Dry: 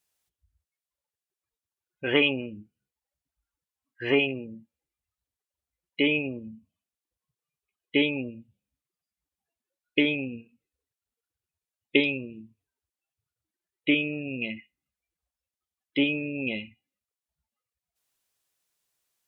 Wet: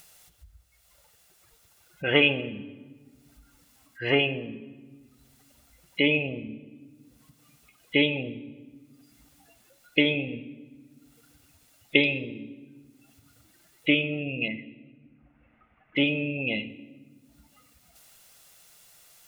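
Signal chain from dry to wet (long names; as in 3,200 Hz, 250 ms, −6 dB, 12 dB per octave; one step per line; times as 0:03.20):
0:14.48–0:15.97: Butterworth low-pass 2,500 Hz 48 dB per octave
upward compression, threshold −41 dBFS
convolution reverb RT60 1.5 s, pre-delay 6 ms, DRR 10 dB
level +2 dB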